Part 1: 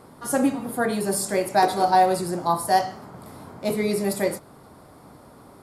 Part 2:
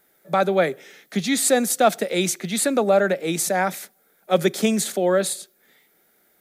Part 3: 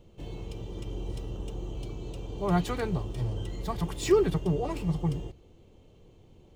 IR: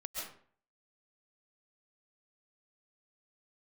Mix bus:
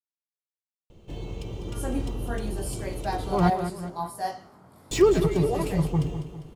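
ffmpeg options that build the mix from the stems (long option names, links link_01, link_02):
-filter_complex "[0:a]flanger=delay=16.5:depth=5.5:speed=0.78,adelay=1500,volume=-8.5dB[link_01];[2:a]adelay=900,volume=3dB,asplit=3[link_02][link_03][link_04];[link_02]atrim=end=3.5,asetpts=PTS-STARTPTS,afade=type=out:start_time=3.496:duration=0.004:curve=hsin[link_05];[link_03]atrim=start=3.5:end=4.91,asetpts=PTS-STARTPTS,volume=0[link_06];[link_04]atrim=start=4.91,asetpts=PTS-STARTPTS,afade=type=in:duration=0.004:curve=hsin[link_07];[link_05][link_06][link_07]concat=n=3:v=0:a=1,asplit=3[link_08][link_09][link_10];[link_09]volume=-17dB[link_11];[link_10]volume=-10dB[link_12];[3:a]atrim=start_sample=2205[link_13];[link_11][link_13]afir=irnorm=-1:irlink=0[link_14];[link_12]aecho=0:1:200|400|600|800|1000|1200:1|0.46|0.212|0.0973|0.0448|0.0206[link_15];[link_01][link_08][link_14][link_15]amix=inputs=4:normalize=0"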